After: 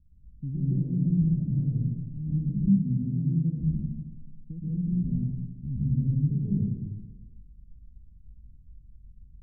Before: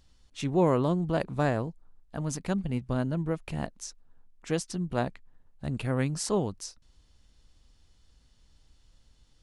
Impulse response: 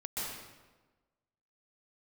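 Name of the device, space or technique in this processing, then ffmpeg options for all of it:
club heard from the street: -filter_complex "[0:a]alimiter=limit=-23dB:level=0:latency=1:release=38,lowpass=f=200:w=0.5412,lowpass=f=200:w=1.3066[a];[1:a]atrim=start_sample=2205[b];[a][b]afir=irnorm=-1:irlink=0,asettb=1/sr,asplit=3[c][d][e];[c]atrim=end=2.684[f];[d]atrim=start=2.68:end=3.61,asetpts=PTS-STARTPTS,afade=t=in:d=0.004:c=qsin,afade=t=out:st=0.926:d=0.004:c=qsin,highpass=120[g];[e]atrim=start=3.606[h];[f][g]acrossfade=d=0.004:c1=hsin:c2=qsin[i];[i][h]acrossfade=d=0.004:c1=qsin:c2=hsin,volume=7dB"

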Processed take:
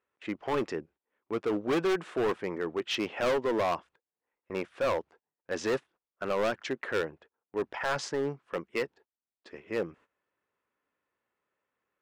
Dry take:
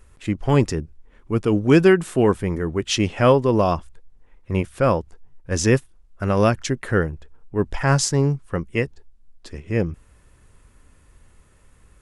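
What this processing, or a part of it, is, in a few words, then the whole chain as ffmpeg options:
walkie-talkie: -af "highpass=400,lowpass=2.8k,asoftclip=type=hard:threshold=-21dB,agate=range=-17dB:threshold=-52dB:ratio=16:detection=peak,volume=-3dB"

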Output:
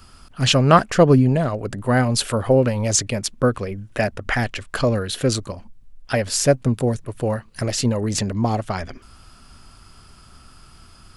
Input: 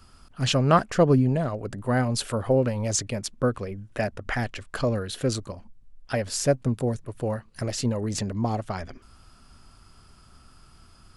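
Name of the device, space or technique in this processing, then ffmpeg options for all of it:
presence and air boost: -af "equalizer=f=2.7k:t=o:w=1.7:g=2.5,highshelf=f=9.5k:g=4,volume=5.5dB"

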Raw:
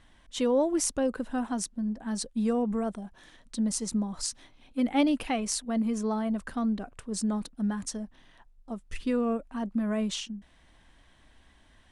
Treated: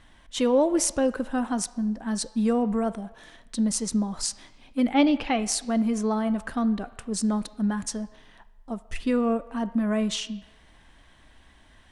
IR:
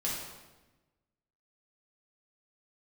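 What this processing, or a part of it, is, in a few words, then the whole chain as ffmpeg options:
filtered reverb send: -filter_complex "[0:a]asplit=3[a][b][c];[a]afade=t=out:st=4.93:d=0.02[d];[b]lowpass=f=5.7k:w=0.5412,lowpass=f=5.7k:w=1.3066,afade=t=in:st=4.93:d=0.02,afade=t=out:st=5.38:d=0.02[e];[c]afade=t=in:st=5.38:d=0.02[f];[d][e][f]amix=inputs=3:normalize=0,asplit=2[g][h];[h]highpass=580,lowpass=3.7k[i];[1:a]atrim=start_sample=2205[j];[i][j]afir=irnorm=-1:irlink=0,volume=-16dB[k];[g][k]amix=inputs=2:normalize=0,volume=4dB"

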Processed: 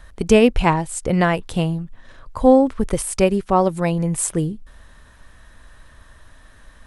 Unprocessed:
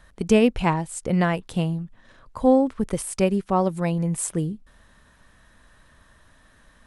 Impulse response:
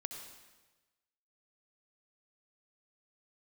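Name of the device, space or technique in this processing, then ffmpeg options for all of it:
low shelf boost with a cut just above: -af "lowshelf=f=73:g=7.5,equalizer=f=190:t=o:w=0.83:g=-4.5,volume=5.5dB"

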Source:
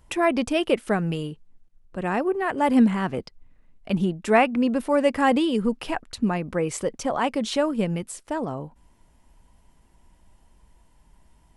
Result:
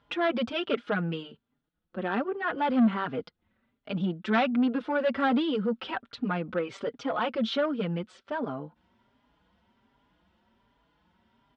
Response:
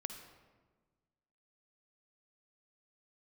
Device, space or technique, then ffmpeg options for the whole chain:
barber-pole flanger into a guitar amplifier: -filter_complex "[0:a]asplit=2[a][b];[b]adelay=4.5,afreqshift=1.3[c];[a][c]amix=inputs=2:normalize=1,asoftclip=type=tanh:threshold=-19.5dB,highpass=110,equalizer=f=140:t=q:w=4:g=-4,equalizer=f=230:t=q:w=4:g=5,equalizer=f=490:t=q:w=4:g=3,equalizer=f=1.4k:t=q:w=4:g=10,equalizer=f=3.4k:t=q:w=4:g=7,lowpass=f=4.4k:w=0.5412,lowpass=f=4.4k:w=1.3066,volume=-2dB"

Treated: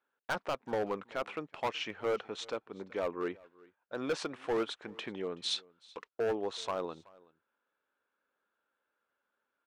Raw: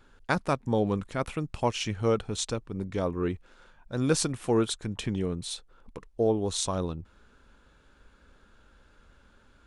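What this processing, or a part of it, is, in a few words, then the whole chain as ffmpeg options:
walkie-talkie: -filter_complex "[0:a]highpass=470,lowpass=2.6k,asoftclip=type=hard:threshold=-27dB,agate=range=-19dB:threshold=-54dB:ratio=16:detection=peak,asplit=3[a][b][c];[a]afade=t=out:st=5.42:d=0.02[d];[b]equalizer=f=6.1k:t=o:w=2.9:g=14.5,afade=t=in:st=5.42:d=0.02,afade=t=out:st=6.07:d=0.02[e];[c]afade=t=in:st=6.07:d=0.02[f];[d][e][f]amix=inputs=3:normalize=0,aecho=1:1:377:0.0631"

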